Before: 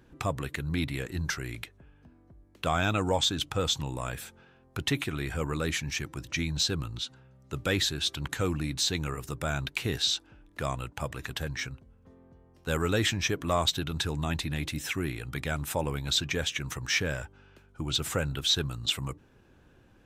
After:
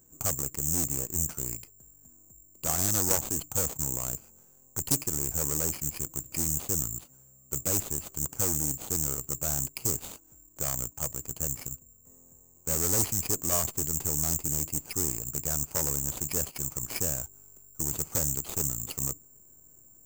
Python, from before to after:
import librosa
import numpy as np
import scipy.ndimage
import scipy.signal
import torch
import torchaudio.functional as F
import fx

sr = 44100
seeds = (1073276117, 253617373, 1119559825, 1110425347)

p1 = scipy.ndimage.median_filter(x, 25, mode='constant')
p2 = fx.cheby_harmonics(p1, sr, harmonics=(4, 6), levels_db=(-6, -9), full_scale_db=-16.5)
p3 = fx.backlash(p2, sr, play_db=-36.0)
p4 = p2 + (p3 * 10.0 ** (-5.0 / 20.0))
p5 = (np.kron(scipy.signal.resample_poly(p4, 1, 6), np.eye(6)[0]) * 6)[:len(p4)]
p6 = fx.doppler_dist(p5, sr, depth_ms=0.47)
y = p6 * 10.0 ** (-7.0 / 20.0)